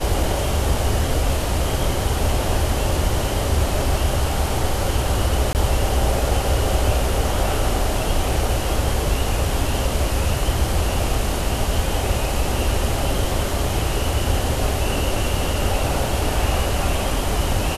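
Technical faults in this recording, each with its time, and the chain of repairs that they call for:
0:05.53–0:05.55: drop-out 19 ms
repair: repair the gap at 0:05.53, 19 ms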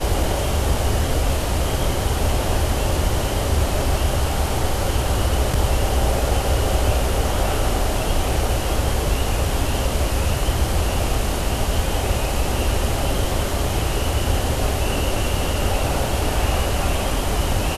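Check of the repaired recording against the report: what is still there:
none of them is left

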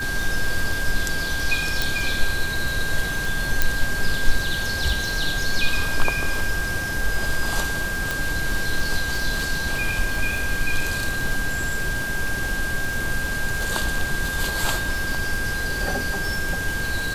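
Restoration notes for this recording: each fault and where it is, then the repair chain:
surface crackle 28 per second −27 dBFS
whistle 1,600 Hz −26 dBFS
0:01.82: click
0:03.62: click
0:08.11: click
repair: click removal
notch filter 1,600 Hz, Q 30

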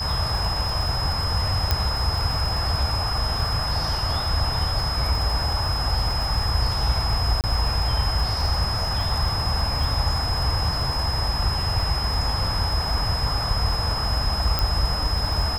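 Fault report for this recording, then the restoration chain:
surface crackle 42 per second −28 dBFS
whistle 5,100 Hz −27 dBFS
0:01.71: click −6 dBFS
0:07.41–0:07.44: drop-out 28 ms
0:14.59: click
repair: click removal
notch filter 5,100 Hz, Q 30
repair the gap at 0:07.41, 28 ms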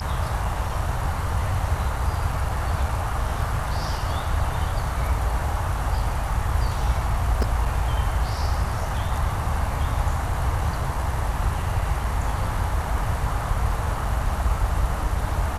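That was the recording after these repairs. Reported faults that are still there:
0:14.59: click

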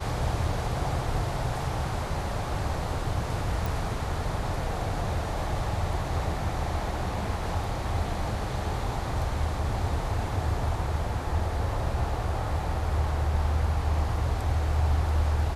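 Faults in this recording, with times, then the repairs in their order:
0:03.66: click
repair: click removal

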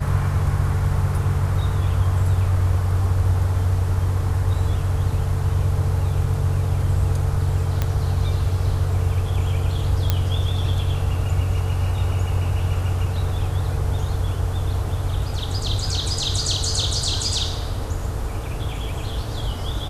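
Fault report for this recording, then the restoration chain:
0:07.82: click −8 dBFS
0:10.10: click −5 dBFS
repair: click removal

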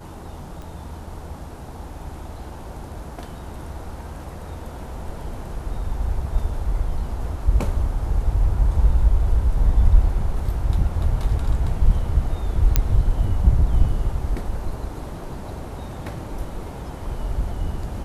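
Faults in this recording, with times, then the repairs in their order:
0:00.62: click
0:12.76: click −2 dBFS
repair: click removal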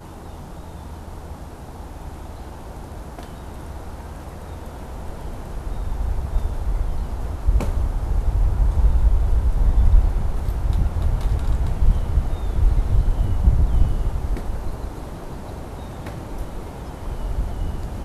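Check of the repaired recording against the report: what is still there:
0:00.62: click

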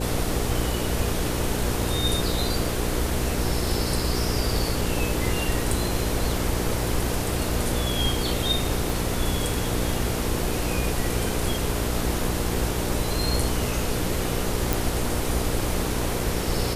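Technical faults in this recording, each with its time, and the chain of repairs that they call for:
mains hum 60 Hz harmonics 8 −29 dBFS
0:08.90: click
0:14.73: click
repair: click removal
hum removal 60 Hz, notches 8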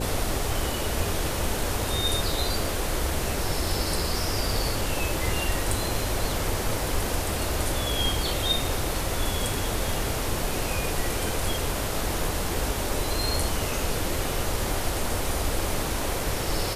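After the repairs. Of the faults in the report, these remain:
0:08.90: click

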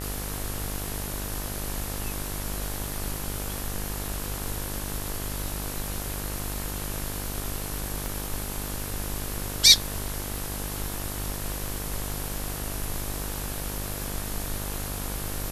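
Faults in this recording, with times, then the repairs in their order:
mains buzz 50 Hz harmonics 37 −35 dBFS
0:08.06: click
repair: click removal
hum removal 50 Hz, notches 37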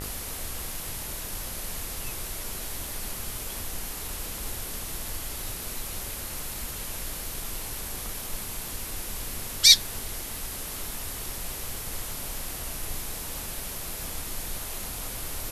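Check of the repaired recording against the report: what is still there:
0:08.06: click

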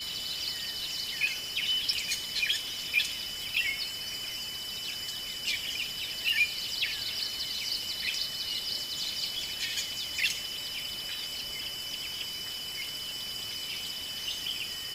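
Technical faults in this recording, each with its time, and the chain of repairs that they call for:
surface crackle 20 per second −42 dBFS
whistle 3,000 Hz −38 dBFS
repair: click removal
notch filter 3,000 Hz, Q 30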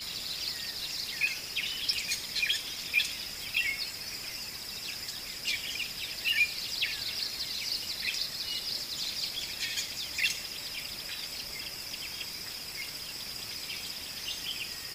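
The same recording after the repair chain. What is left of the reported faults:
none of them is left

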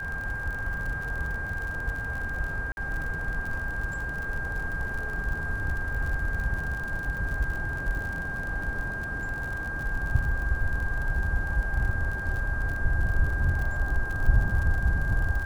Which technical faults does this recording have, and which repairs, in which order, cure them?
surface crackle 55 per second −33 dBFS
whistle 1,600 Hz −32 dBFS
0:02.72–0:02.77: drop-out 51 ms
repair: click removal
notch filter 1,600 Hz, Q 30
repair the gap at 0:02.72, 51 ms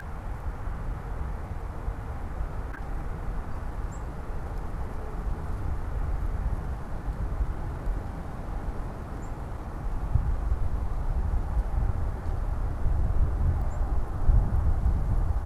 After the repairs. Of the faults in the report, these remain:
none of them is left

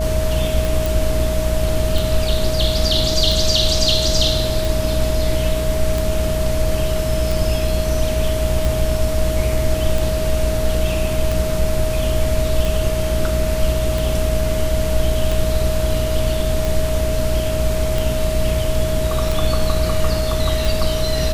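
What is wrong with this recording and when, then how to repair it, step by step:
mains buzz 60 Hz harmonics 11 −22 dBFS
scratch tick 45 rpm
whistle 630 Hz −22 dBFS
0:00.86: click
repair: click removal
hum removal 60 Hz, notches 11
notch filter 630 Hz, Q 30

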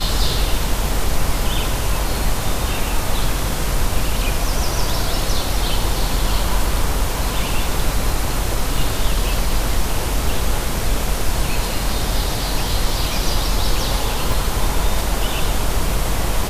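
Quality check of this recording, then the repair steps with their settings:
0:14.32: drop-out 2.7 ms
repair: repair the gap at 0:14.32, 2.7 ms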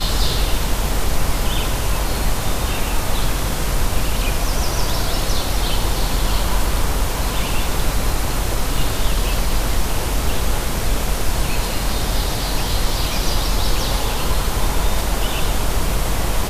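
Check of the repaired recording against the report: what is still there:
none of them is left

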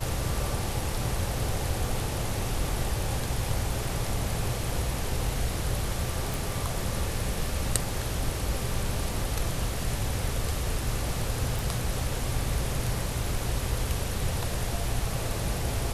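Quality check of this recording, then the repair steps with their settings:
0:06.34: click
0:11.59: click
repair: click removal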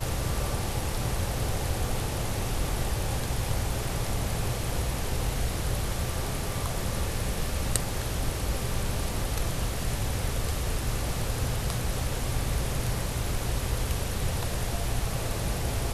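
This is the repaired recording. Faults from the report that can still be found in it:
none of them is left

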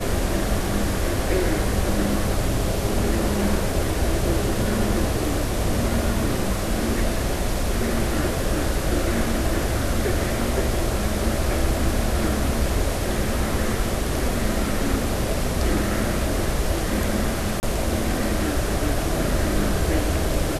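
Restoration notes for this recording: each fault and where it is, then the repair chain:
0:17.60–0:17.63: drop-out 29 ms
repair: repair the gap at 0:17.60, 29 ms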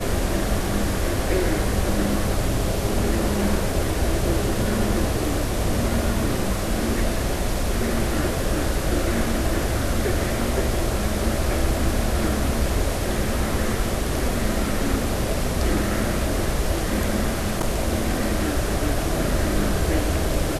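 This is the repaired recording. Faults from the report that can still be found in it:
none of them is left

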